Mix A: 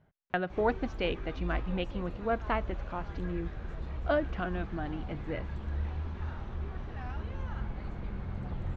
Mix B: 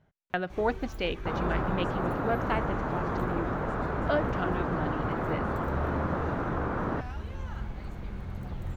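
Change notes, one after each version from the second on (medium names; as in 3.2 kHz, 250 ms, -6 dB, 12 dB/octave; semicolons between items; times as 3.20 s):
second sound: unmuted; master: remove distance through air 130 m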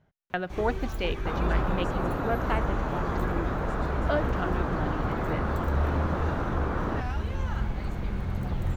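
first sound +7.0 dB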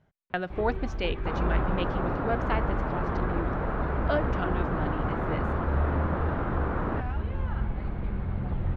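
first sound: add distance through air 400 m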